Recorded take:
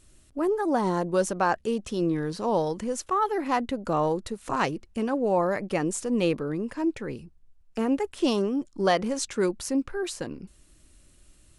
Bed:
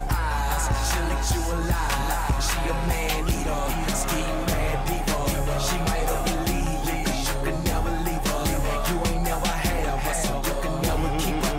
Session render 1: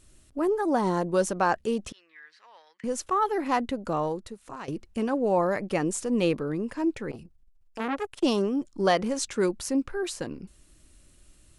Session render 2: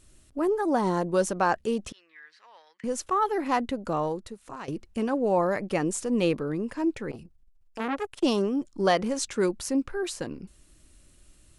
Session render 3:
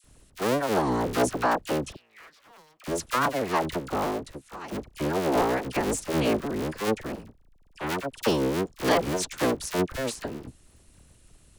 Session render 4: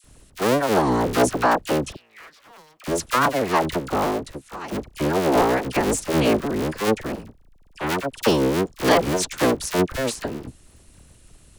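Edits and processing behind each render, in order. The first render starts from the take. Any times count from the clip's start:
0:01.92–0:02.84: four-pole ladder band-pass 2,100 Hz, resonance 65%; 0:03.65–0:04.68: fade out, to −17.5 dB; 0:07.11–0:08.23: saturating transformer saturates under 1,200 Hz
no processing that can be heard
sub-harmonics by changed cycles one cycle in 3, inverted; all-pass dispersion lows, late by 43 ms, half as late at 1,100 Hz
level +5.5 dB

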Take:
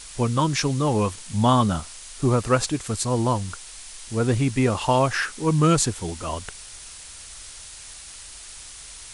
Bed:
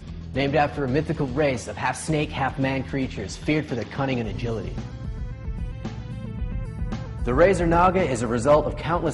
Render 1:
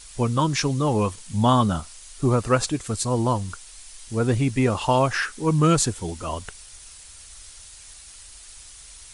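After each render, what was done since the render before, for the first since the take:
broadband denoise 6 dB, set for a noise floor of −42 dBFS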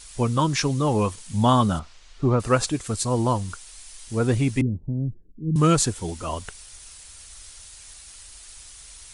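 0:01.79–0:02.40: high-frequency loss of the air 170 metres
0:04.61–0:05.56: inverse Chebyshev low-pass filter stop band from 1,200 Hz, stop band 70 dB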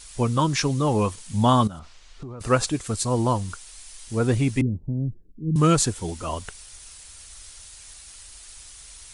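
0:01.67–0:02.41: downward compressor 10 to 1, threshold −33 dBFS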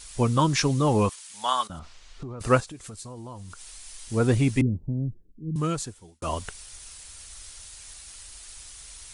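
0:01.09–0:01.70: high-pass filter 1,100 Hz
0:02.60–0:03.85: downward compressor, threshold −38 dBFS
0:04.69–0:06.22: fade out linear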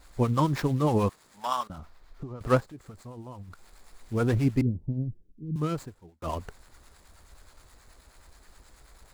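running median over 15 samples
two-band tremolo in antiphase 9.4 Hz, depth 50%, crossover 730 Hz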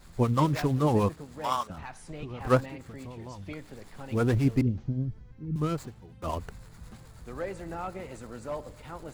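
mix in bed −18.5 dB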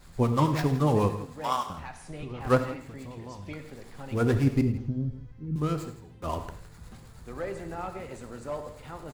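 single-tap delay 164 ms −15.5 dB
reverb whose tail is shaped and stops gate 130 ms flat, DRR 8 dB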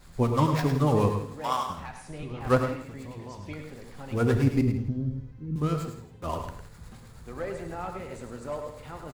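single-tap delay 105 ms −8 dB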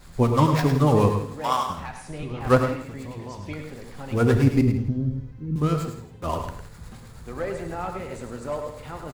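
level +4.5 dB

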